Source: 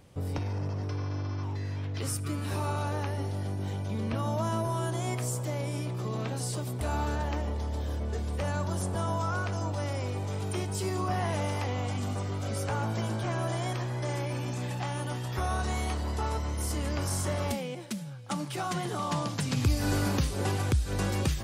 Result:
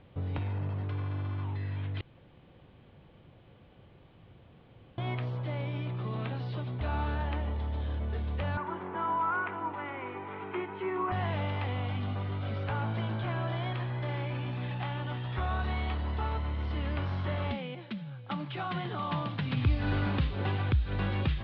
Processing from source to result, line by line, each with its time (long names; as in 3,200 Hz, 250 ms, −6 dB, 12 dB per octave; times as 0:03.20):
0:02.01–0:04.98: fill with room tone
0:08.57–0:11.12: loudspeaker in its box 280–2,600 Hz, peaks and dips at 360 Hz +8 dB, 600 Hz −7 dB, 970 Hz +8 dB, 1,400 Hz +4 dB, 2,100 Hz +5 dB
whole clip: Butterworth low-pass 3,700 Hz 48 dB per octave; dynamic equaliser 440 Hz, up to −5 dB, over −46 dBFS, Q 0.72